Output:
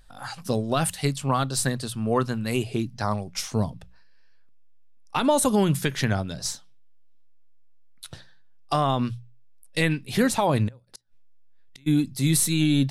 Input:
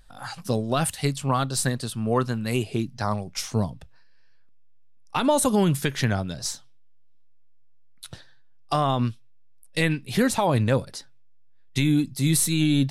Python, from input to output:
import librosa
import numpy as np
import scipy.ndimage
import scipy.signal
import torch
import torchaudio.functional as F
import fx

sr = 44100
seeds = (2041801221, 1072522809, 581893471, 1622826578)

y = fx.gate_flip(x, sr, shuts_db=-27.0, range_db=-33, at=(10.67, 11.86), fade=0.02)
y = fx.hum_notches(y, sr, base_hz=60, count=3)